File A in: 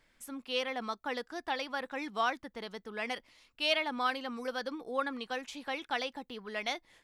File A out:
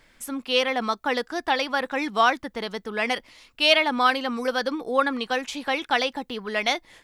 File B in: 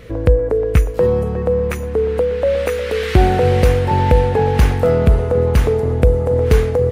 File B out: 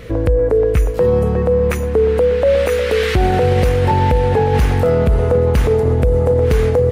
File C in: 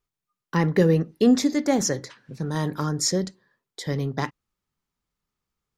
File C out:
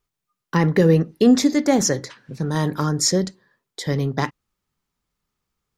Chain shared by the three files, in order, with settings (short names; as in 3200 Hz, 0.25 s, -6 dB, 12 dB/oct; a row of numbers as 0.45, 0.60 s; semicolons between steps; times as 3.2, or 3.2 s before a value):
limiter -10.5 dBFS; normalise peaks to -6 dBFS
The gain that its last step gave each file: +11.5, +4.5, +4.5 dB